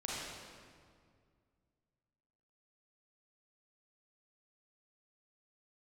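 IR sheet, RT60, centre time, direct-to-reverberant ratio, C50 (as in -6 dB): 2.1 s, 0.134 s, -6.5 dB, -4.0 dB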